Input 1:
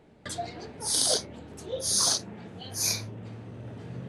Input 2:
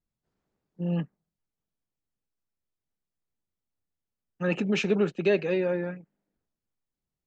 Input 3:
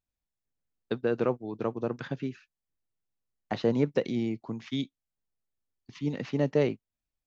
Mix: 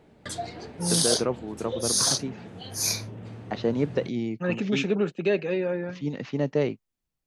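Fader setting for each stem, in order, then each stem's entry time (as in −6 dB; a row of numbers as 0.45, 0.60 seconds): +1.0, −0.5, +0.5 decibels; 0.00, 0.00, 0.00 seconds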